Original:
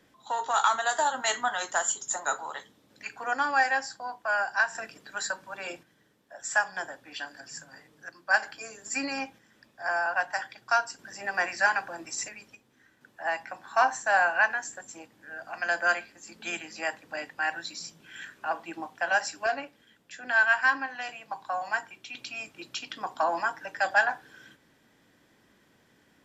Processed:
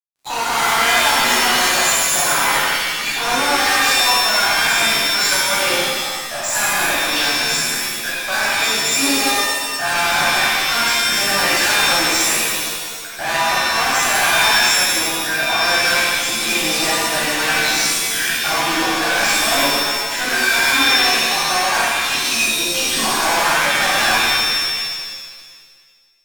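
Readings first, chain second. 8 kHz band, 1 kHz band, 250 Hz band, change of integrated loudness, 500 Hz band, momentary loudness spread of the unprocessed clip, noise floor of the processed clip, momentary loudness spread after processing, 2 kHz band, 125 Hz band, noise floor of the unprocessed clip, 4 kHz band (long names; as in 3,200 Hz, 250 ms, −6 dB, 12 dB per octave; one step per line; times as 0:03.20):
+19.0 dB, +10.5 dB, +17.5 dB, +13.5 dB, +11.0 dB, 18 LU, −33 dBFS, 6 LU, +11.5 dB, can't be measured, −65 dBFS, +24.5 dB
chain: fuzz pedal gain 46 dB, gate −51 dBFS
reverb with rising layers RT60 1.6 s, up +7 semitones, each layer −2 dB, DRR −7 dB
level −11.5 dB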